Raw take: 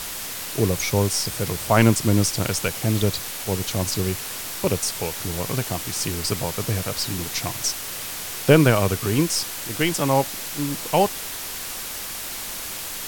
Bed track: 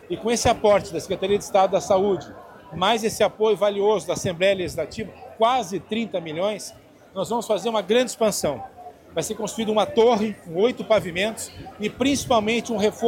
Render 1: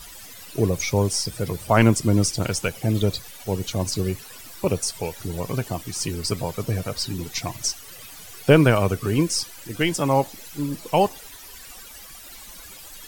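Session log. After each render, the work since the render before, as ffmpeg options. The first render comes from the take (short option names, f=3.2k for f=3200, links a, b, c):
-af "afftdn=nr=15:nf=-32"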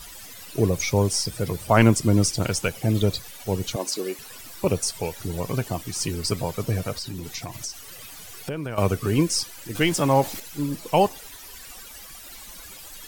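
-filter_complex "[0:a]asettb=1/sr,asplit=3[a][b][c];[a]atrim=end=3.764[d];[b]atrim=start=3.76:end=4.19,asetpts=PTS-STARTPTS,afade=t=in:d=0.004:c=qsin,afade=t=out:st=0.426:d=0.004:c=qsin,highpass=f=280:w=0.5412,highpass=f=280:w=1.3066[e];[c]atrim=start=4.186[f];[d][e]acrossfade=d=0.004:c1=hsin:c2=qsin[g];[g][f]acrossfade=d=0.004:c1=qsin:c2=hsin,asettb=1/sr,asplit=3[h][i][j];[h]atrim=end=6.924[k];[i]atrim=start=6.92:end=8.78,asetpts=PTS-STARTPTS,afade=t=in:d=0.004:c=qsin,afade=t=out:st=1.856:d=0.004:c=qsin,acompressor=threshold=-29dB:ratio=5:attack=3.2:release=140:knee=1:detection=peak[l];[j]atrim=start=8.776[m];[k][l]acrossfade=d=0.004:c1=hsin:c2=qsin[n];[n][m]acrossfade=d=0.004:c1=qsin:c2=hsin,asettb=1/sr,asplit=3[o][p][q];[o]atrim=end=9.754[r];[p]atrim=start=9.75:end=10.4,asetpts=PTS-STARTPTS,afade=t=in:d=0.004:c=qsin,afade=t=out:st=0.646:d=0.004:c=qsin,aeval=exprs='val(0)+0.5*0.0237*sgn(val(0))':c=same[s];[q]atrim=start=10.396[t];[r][s]acrossfade=d=0.004:c1=hsin:c2=qsin[u];[u][t]acrossfade=d=0.004:c1=qsin:c2=hsin"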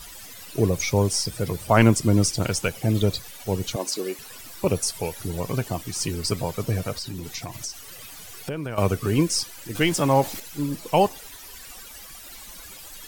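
-filter_complex "[0:a]asettb=1/sr,asplit=3[a][b][c];[a]atrim=end=4.754[d];[b]atrim=start=4.75:end=5.3,asetpts=PTS-STARTPTS,afade=t=in:d=0.004:c=qsin,afade=t=out:st=0.546:d=0.004:c=qsin,equalizer=f=11k:w=7.6:g=10[e];[c]atrim=start=5.296[f];[d][e]acrossfade=d=0.004:c1=hsin:c2=qsin[g];[g][f]acrossfade=d=0.004:c1=qsin:c2=hsin,asettb=1/sr,asplit=3[h][i][j];[h]atrim=end=9.024[k];[i]atrim=start=9.02:end=9.44,asetpts=PTS-STARTPTS,afade=t=in:d=0.004:c=qsin,afade=t=out:st=0.416:d=0.004:c=qsin,aeval=exprs='val(0)*gte(abs(val(0)),0.00596)':c=same[l];[j]atrim=start=9.436[m];[k][l]acrossfade=d=0.004:c1=hsin:c2=qsin[n];[n][m]acrossfade=d=0.004:c1=qsin:c2=hsin"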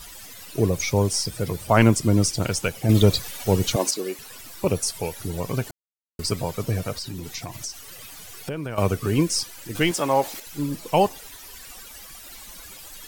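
-filter_complex "[0:a]asettb=1/sr,asplit=3[a][b][c];[a]atrim=end=2.894[d];[b]atrim=start=2.89:end=3.91,asetpts=PTS-STARTPTS,afade=t=in:d=0.004:c=qsin,afade=t=out:st=1.016:d=0.004:c=qsin,acontrast=51[e];[c]atrim=start=3.906[f];[d][e]acrossfade=d=0.004:c1=hsin:c2=qsin[g];[g][f]acrossfade=d=0.004:c1=qsin:c2=hsin,asettb=1/sr,asplit=3[h][i][j];[h]atrim=end=9.914[k];[i]atrim=start=9.91:end=10.47,asetpts=PTS-STARTPTS,afade=t=in:d=0.004:c=qsin,afade=t=out:st=0.556:d=0.004:c=qsin,bass=f=250:g=-12,treble=f=4k:g=-1[l];[j]atrim=start=10.466[m];[k][l]acrossfade=d=0.004:c1=hsin:c2=qsin[n];[n][m]acrossfade=d=0.004:c1=qsin:c2=hsin,asplit=3[o][p][q];[o]atrim=end=5.71,asetpts=PTS-STARTPTS,afade=t=out:st=5.706:d=0.004:c=hsin[r];[p]atrim=start=5.71:end=6.19,asetpts=PTS-STARTPTS,volume=0[s];[q]atrim=start=6.19,asetpts=PTS-STARTPTS,afade=t=in:d=0.004:c=hsin[t];[r][s][t]concat=n=3:v=0:a=1"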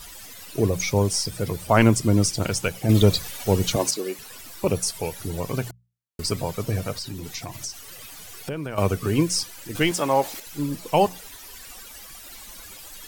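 -af "bandreject=f=60:t=h:w=6,bandreject=f=120:t=h:w=6,bandreject=f=180:t=h:w=6"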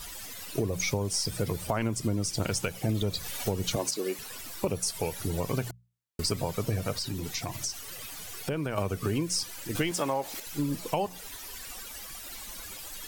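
-af "alimiter=limit=-12dB:level=0:latency=1:release=319,acompressor=threshold=-25dB:ratio=6"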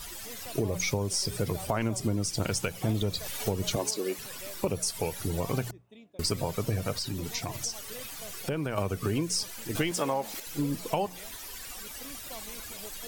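-filter_complex "[1:a]volume=-27.5dB[a];[0:a][a]amix=inputs=2:normalize=0"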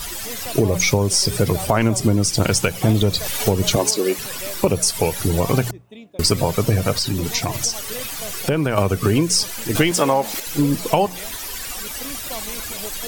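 -af "volume=12dB,alimiter=limit=-2dB:level=0:latency=1"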